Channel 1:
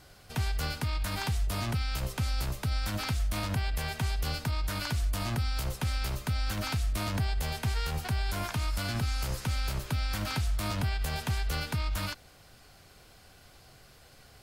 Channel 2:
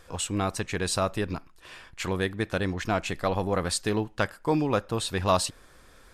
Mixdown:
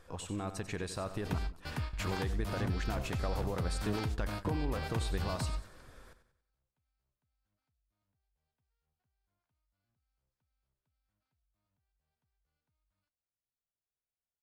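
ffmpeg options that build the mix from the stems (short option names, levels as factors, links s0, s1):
-filter_complex "[0:a]alimiter=level_in=1.12:limit=0.0631:level=0:latency=1,volume=0.891,acompressor=threshold=0.0224:ratio=6,adelay=950,volume=0.708[s0];[1:a]highshelf=f=8500:g=5,alimiter=limit=0.112:level=0:latency=1:release=36,acompressor=threshold=0.0251:ratio=12,volume=0.562,asplit=3[s1][s2][s3];[s2]volume=0.266[s4];[s3]apad=whole_len=677956[s5];[s0][s5]sidechaingate=range=0.00355:threshold=0.00224:ratio=16:detection=peak[s6];[s4]aecho=0:1:93|186|279|372|465|558:1|0.4|0.16|0.064|0.0256|0.0102[s7];[s6][s1][s7]amix=inputs=3:normalize=0,highshelf=f=4700:g=-9.5,dynaudnorm=f=150:g=3:m=1.58,equalizer=f=2500:t=o:w=1.6:g=-2.5"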